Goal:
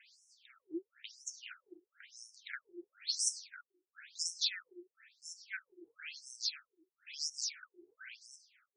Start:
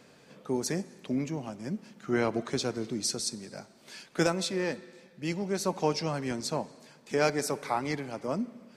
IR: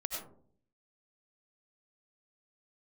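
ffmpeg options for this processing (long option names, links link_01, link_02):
-filter_complex "[0:a]asettb=1/sr,asplit=3[link_01][link_02][link_03];[link_01]atrim=end=1.064[link_04];[link_02]atrim=start=1.06:end=1.92,asetpts=PTS-STARTPTS,afade=type=in:duration=0.004:curve=qsin,afade=type=out:start_time=0.856:duration=0.004:curve=qsin,acontrast=29[link_05];[link_03]atrim=start=1.916[link_06];[link_04][link_05]acrossfade=duration=0.004:curve1=hsin:curve2=qsin[link_07];[link_07][link_06]acrossfade=duration=0.004:curve1=qsin:curve2=hsin,flanger=delay=6.9:depth=8.7:regen=-63:speed=1.1:shape=sinusoidal,asuperstop=centerf=680:order=20:qfactor=0.66,asplit=2[link_08][link_09];[1:a]atrim=start_sample=2205,lowpass=6400[link_10];[link_09][link_10]afir=irnorm=-1:irlink=0,volume=-15dB[link_11];[link_08][link_11]amix=inputs=2:normalize=0,afftfilt=real='re*between(b*sr/1024,470*pow(7600/470,0.5+0.5*sin(2*PI*0.99*pts/sr))/1.41,470*pow(7600/470,0.5+0.5*sin(2*PI*0.99*pts/sr))*1.41)':imag='im*between(b*sr/1024,470*pow(7600/470,0.5+0.5*sin(2*PI*0.99*pts/sr))/1.41,470*pow(7600/470,0.5+0.5*sin(2*PI*0.99*pts/sr))*1.41)':win_size=1024:overlap=0.75,volume=6.5dB"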